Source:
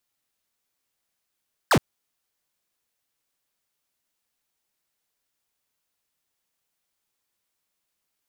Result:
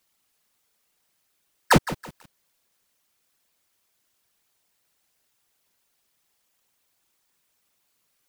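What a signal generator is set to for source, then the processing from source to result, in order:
laser zap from 1.9 kHz, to 89 Hz, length 0.07 s square, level -17 dB
in parallel at +3 dB: compression 5:1, threshold -33 dBFS; on the sum: whisper effect; bit-crushed delay 163 ms, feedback 35%, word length 6-bit, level -13.5 dB

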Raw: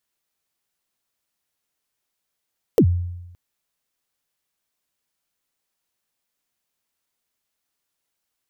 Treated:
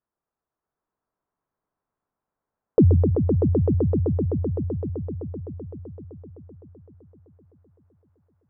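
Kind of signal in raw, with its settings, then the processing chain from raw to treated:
kick drum length 0.57 s, from 530 Hz, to 88 Hz, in 74 ms, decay 0.98 s, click on, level -8.5 dB
low-pass 1.3 kHz 24 dB/octave; on a send: echo with a slow build-up 128 ms, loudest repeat 5, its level -6.5 dB; on the sum: decay stretcher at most 25 dB/s

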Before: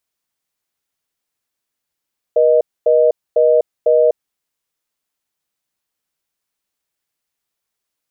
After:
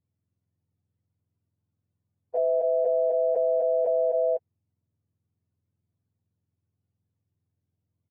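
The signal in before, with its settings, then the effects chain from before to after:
call progress tone reorder tone, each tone -11.5 dBFS 1.85 s
spectrum inverted on a logarithmic axis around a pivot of 560 Hz; delay 252 ms -8.5 dB; peak limiter -17.5 dBFS

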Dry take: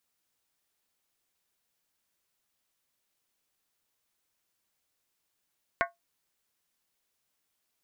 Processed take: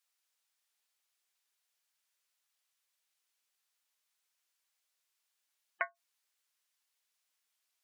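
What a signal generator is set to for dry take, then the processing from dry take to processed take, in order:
skin hit, lowest mode 686 Hz, modes 7, decay 0.17 s, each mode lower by 1 dB, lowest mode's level -23.5 dB
high-pass 1.5 kHz 6 dB/octave; spectral gate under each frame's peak -20 dB strong; treble shelf 12 kHz -7 dB

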